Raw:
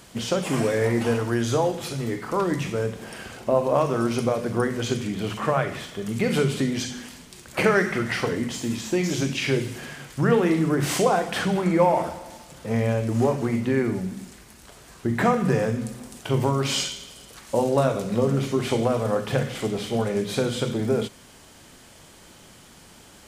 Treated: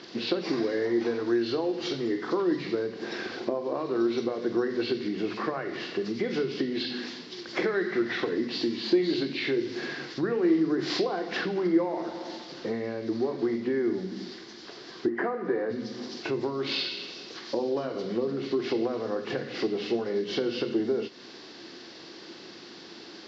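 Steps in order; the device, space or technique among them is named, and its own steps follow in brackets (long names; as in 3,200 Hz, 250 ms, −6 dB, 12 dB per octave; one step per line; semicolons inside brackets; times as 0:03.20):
0:15.08–0:15.71: three-way crossover with the lows and the highs turned down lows −15 dB, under 260 Hz, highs −18 dB, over 2,500 Hz
hearing aid with frequency lowering (hearing-aid frequency compression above 1,900 Hz 1.5 to 1; downward compressor 4 to 1, threshold −32 dBFS, peak gain reduction 15 dB; loudspeaker in its box 290–5,100 Hz, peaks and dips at 340 Hz +10 dB, 600 Hz −7 dB, 890 Hz −6 dB, 1,300 Hz −5 dB, 2,500 Hz −6 dB, 4,500 Hz +3 dB)
level +6 dB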